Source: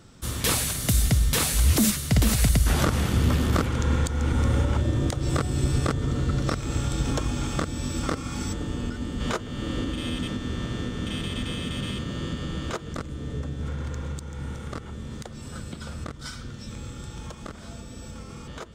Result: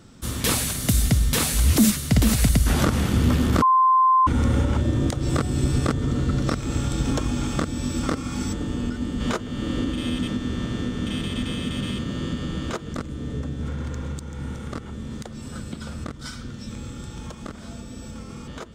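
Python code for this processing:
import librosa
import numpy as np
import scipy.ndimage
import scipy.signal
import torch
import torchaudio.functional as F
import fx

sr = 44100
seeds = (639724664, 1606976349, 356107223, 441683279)

y = fx.edit(x, sr, fx.bleep(start_s=3.62, length_s=0.65, hz=1040.0, db=-14.5), tone=tone)
y = fx.peak_eq(y, sr, hz=240.0, db=5.0, octaves=0.77)
y = y * 10.0 ** (1.0 / 20.0)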